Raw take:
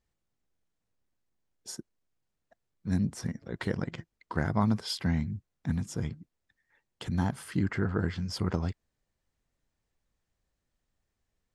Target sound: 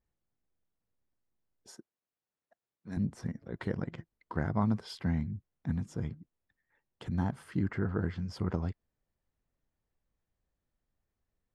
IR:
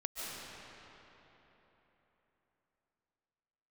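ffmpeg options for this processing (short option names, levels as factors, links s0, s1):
-filter_complex "[0:a]asettb=1/sr,asplit=3[s0][s1][s2];[s0]atrim=end=1.694[s3];[s1]atrim=start=1.69:end=2.97,asetpts=PTS-STARTPTS,afade=t=in:d=0.004:c=qsin,afade=t=out:st=1.276:d=0.004:c=qsin,highpass=f=500:p=1[s4];[s2]atrim=start=2.966[s5];[s3][s4]acrossfade=d=0.004:c1=hsin:c2=qsin[s6];[s6][s5]acrossfade=d=0.004:c1=qsin:c2=hsin,highshelf=f=2800:g=-11.5,volume=0.75"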